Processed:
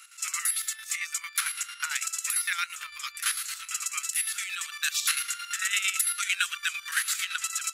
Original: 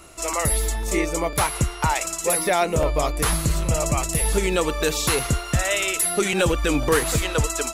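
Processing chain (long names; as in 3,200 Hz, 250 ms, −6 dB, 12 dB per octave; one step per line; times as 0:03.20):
elliptic high-pass filter 1,400 Hz, stop band 50 dB
square-wave tremolo 8.9 Hz, depth 60%, duty 50%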